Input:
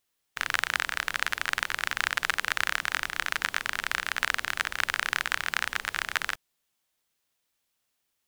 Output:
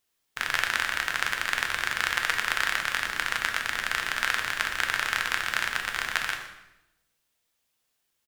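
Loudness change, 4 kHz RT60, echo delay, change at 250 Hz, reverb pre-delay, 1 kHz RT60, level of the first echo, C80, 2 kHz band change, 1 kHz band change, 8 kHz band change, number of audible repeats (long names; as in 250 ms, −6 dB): +1.5 dB, 0.80 s, 122 ms, +2.5 dB, 4 ms, 0.85 s, −15.0 dB, 9.0 dB, +2.0 dB, +1.5 dB, +1.5 dB, 1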